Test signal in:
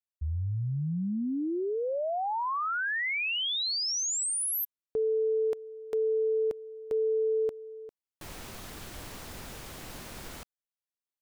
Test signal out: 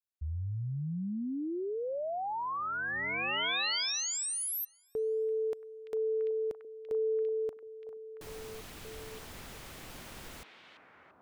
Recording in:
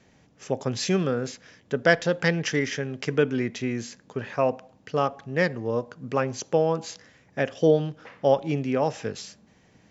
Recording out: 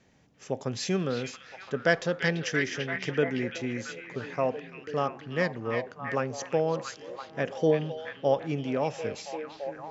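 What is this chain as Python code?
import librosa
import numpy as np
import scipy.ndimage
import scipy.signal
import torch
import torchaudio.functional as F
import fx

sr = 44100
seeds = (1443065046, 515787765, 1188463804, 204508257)

y = fx.echo_stepped(x, sr, ms=339, hz=2700.0, octaves=-0.7, feedback_pct=70, wet_db=-1.5)
y = F.gain(torch.from_numpy(y), -4.5).numpy()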